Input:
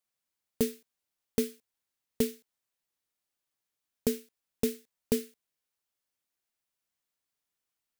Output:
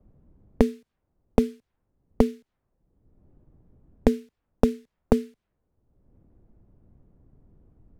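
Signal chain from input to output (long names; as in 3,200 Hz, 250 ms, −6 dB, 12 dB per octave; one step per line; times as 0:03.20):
RIAA equalisation playback
low-pass that shuts in the quiet parts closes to 360 Hz, open at −29 dBFS
multiband upward and downward compressor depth 100%
level +5.5 dB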